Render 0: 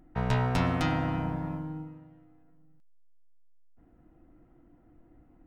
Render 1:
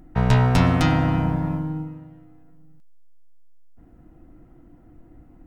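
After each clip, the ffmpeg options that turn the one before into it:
-af "bass=f=250:g=4,treble=f=4k:g=3,volume=7dB"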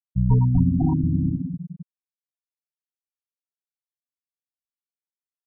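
-filter_complex "[0:a]asplit=2[a][b];[b]adelay=480,lowpass=f=2.7k:p=1,volume=-8.5dB,asplit=2[c][d];[d]adelay=480,lowpass=f=2.7k:p=1,volume=0.29,asplit=2[e][f];[f]adelay=480,lowpass=f=2.7k:p=1,volume=0.29[g];[a][c][e][g]amix=inputs=4:normalize=0,afftfilt=real='re*gte(hypot(re,im),0.398)':imag='im*gte(hypot(re,im),0.398)':win_size=1024:overlap=0.75"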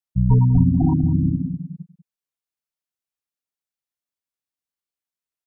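-af "aecho=1:1:193:0.15,volume=2.5dB"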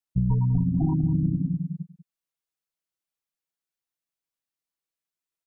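-af "aecho=1:1:6.1:0.46,acompressor=threshold=-18dB:ratio=6,volume=-1.5dB"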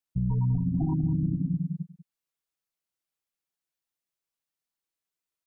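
-af "alimiter=limit=-19dB:level=0:latency=1:release=122"

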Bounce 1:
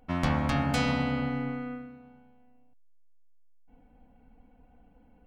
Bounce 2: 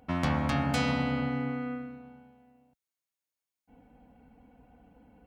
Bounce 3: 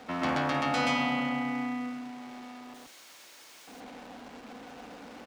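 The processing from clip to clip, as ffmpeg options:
-filter_complex "[0:a]highpass=60,asplit=2[a][b];[b]acompressor=threshold=-37dB:ratio=6,volume=1dB[c];[a][c]amix=inputs=2:normalize=0,volume=-3dB"
-filter_complex "[0:a]aeval=exprs='val(0)+0.5*0.00841*sgn(val(0))':c=same,acrossover=split=220 7200:gain=0.126 1 0.251[a][b][c];[a][b][c]amix=inputs=3:normalize=0,aecho=1:1:52.48|128.3:0.282|1,volume=-1dB"

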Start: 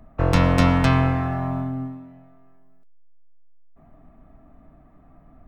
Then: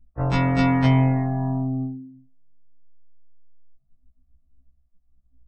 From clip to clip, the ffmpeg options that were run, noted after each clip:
-af "afftdn=nr=36:nf=-34,afftfilt=real='re*1.73*eq(mod(b,3),0)':imag='im*1.73*eq(mod(b,3),0)':win_size=2048:overlap=0.75"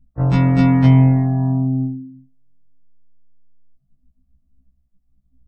-af "equalizer=f=170:w=0.69:g=10.5,volume=-1.5dB"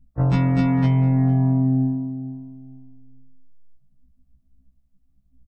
-filter_complex "[0:a]acompressor=threshold=-15dB:ratio=6,asplit=2[a][b];[b]adelay=450,lowpass=f=1.1k:p=1,volume=-11.5dB,asplit=2[c][d];[d]adelay=450,lowpass=f=1.1k:p=1,volume=0.27,asplit=2[e][f];[f]adelay=450,lowpass=f=1.1k:p=1,volume=0.27[g];[c][e][g]amix=inputs=3:normalize=0[h];[a][h]amix=inputs=2:normalize=0"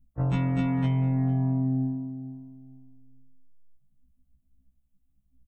-af "aexciter=amount=1.1:drive=3.5:freq=2.6k,volume=-7dB"

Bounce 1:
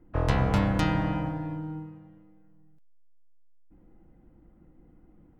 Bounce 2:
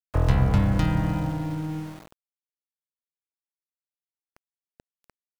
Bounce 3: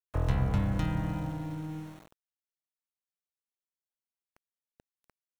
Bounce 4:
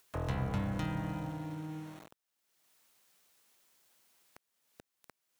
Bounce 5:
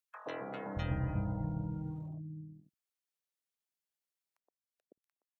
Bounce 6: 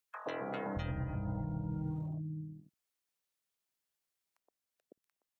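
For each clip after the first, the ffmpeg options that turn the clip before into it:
-filter_complex "[0:a]acrossover=split=170[a][b];[b]acompressor=threshold=-38dB:ratio=2.5[c];[a][c]amix=inputs=2:normalize=0,aeval=exprs='val(0)*gte(abs(val(0)),0.00562)':c=same,volume=6.5dB"
-af "bandreject=f=4.8k:w=9.9,volume=-7.5dB"
-filter_complex "[0:a]highpass=f=160:p=1,asplit=2[a][b];[b]acompressor=mode=upward:threshold=-35dB:ratio=2.5,volume=1dB[c];[a][c]amix=inputs=2:normalize=0,volume=-8.5dB"
-filter_complex "[0:a]afftdn=nr=26:nf=-47,acrossover=split=240|1000[a][b][c];[b]adelay=120[d];[a]adelay=610[e];[e][d][c]amix=inputs=3:normalize=0,volume=1dB"
-af "alimiter=level_in=8.5dB:limit=-24dB:level=0:latency=1:release=276,volume=-8.5dB,volume=4dB"

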